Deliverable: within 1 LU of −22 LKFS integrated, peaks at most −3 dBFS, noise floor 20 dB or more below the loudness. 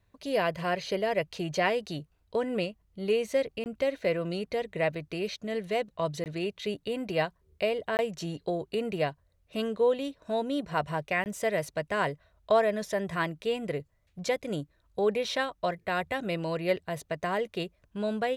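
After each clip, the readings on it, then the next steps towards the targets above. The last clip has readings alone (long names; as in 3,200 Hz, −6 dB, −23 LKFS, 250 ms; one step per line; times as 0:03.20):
number of dropouts 4; longest dropout 19 ms; integrated loudness −31.0 LKFS; sample peak −12.5 dBFS; target loudness −22.0 LKFS
→ repair the gap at 0:03.64/0:06.24/0:07.97/0:11.24, 19 ms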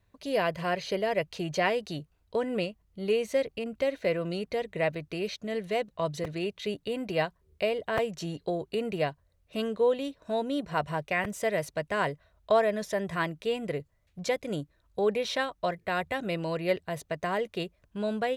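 number of dropouts 0; integrated loudness −31.0 LKFS; sample peak −12.5 dBFS; target loudness −22.0 LKFS
→ level +9 dB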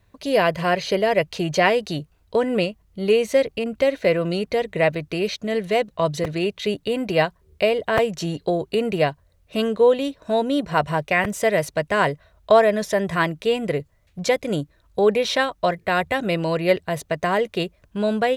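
integrated loudness −22.0 LKFS; sample peak −3.5 dBFS; background noise floor −61 dBFS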